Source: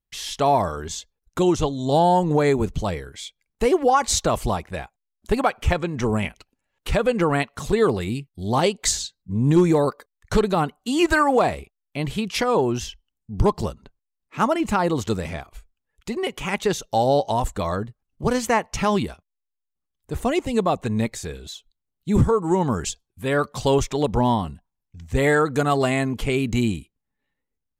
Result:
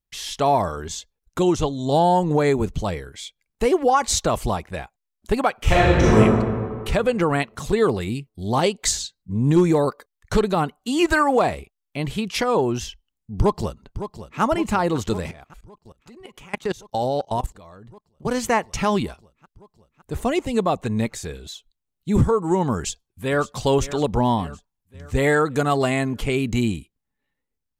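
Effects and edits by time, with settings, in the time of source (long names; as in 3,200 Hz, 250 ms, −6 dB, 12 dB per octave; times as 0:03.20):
0:05.59–0:06.17: thrown reverb, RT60 1.9 s, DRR −8.5 dB
0:13.39–0:14.41: delay throw 560 ms, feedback 80%, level −11.5 dB
0:15.31–0:18.38: output level in coarse steps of 22 dB
0:22.75–0:23.52: delay throw 560 ms, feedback 55%, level −15 dB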